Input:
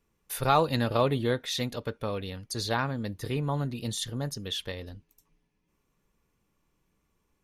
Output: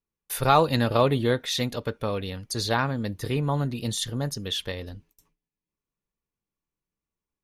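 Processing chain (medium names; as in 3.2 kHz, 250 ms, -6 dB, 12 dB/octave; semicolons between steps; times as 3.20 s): gate with hold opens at -46 dBFS; trim +4 dB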